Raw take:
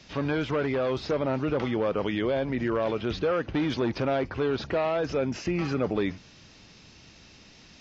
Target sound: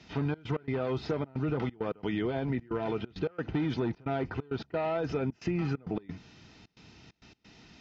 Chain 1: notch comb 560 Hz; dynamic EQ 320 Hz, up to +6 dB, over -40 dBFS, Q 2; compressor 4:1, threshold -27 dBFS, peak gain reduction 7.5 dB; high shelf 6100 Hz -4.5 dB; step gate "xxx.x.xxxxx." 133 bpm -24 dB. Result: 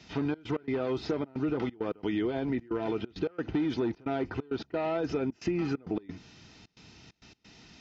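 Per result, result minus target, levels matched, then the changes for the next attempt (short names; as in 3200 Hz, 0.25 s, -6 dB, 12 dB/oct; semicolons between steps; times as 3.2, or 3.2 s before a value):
125 Hz band -5.5 dB; 8000 Hz band +3.5 dB
change: dynamic EQ 140 Hz, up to +6 dB, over -40 dBFS, Q 2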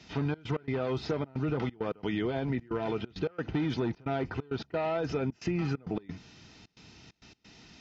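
8000 Hz band +4.5 dB
change: high shelf 6100 Hz -13.5 dB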